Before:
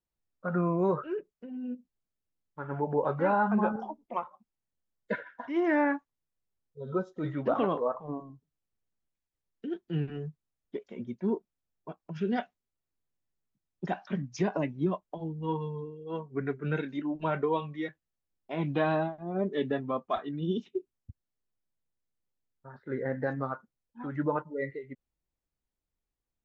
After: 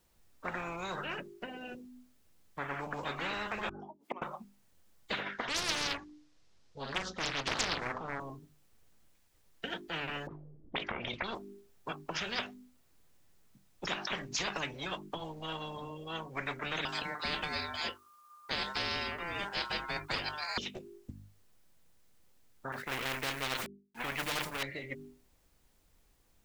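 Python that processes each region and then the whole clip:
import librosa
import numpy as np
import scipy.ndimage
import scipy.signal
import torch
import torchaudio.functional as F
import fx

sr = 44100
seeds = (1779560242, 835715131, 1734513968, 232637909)

y = fx.chain(x, sr, fx.gate_flip(shuts_db=-31.0, range_db=-31),
    fx.highpass(hz=390.0, slope=12), at=(3.69, 4.22))
y = fx.chain(y, sr, fx.lowpass_res(hz=5300.0, q=1.6),
    fx.hum_notches(base_hz=60, count=5),
    fx.doppler_dist(depth_ms=0.94), at=(5.21, 8.2))
y = fx.chain(y, sr, fx.transient(attack_db=-2, sustain_db=11),
    fx.envelope_lowpass(base_hz=270.0, top_hz=3800.0, q=4.9, full_db=-33.5, direction='up'), at=(10.27, 11.35))
y = fx.chain(y, sr, fx.bass_treble(bass_db=8, treble_db=7),
    fx.ring_mod(carrier_hz=1200.0), at=(16.85, 20.58))
y = fx.chain(y, sr, fx.law_mismatch(coded='A'),
    fx.peak_eq(hz=2200.0, db=10.0, octaves=0.75),
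    fx.sustainer(db_per_s=150.0), at=(22.72, 24.63))
y = fx.hum_notches(y, sr, base_hz=50, count=8)
y = fx.spectral_comp(y, sr, ratio=10.0)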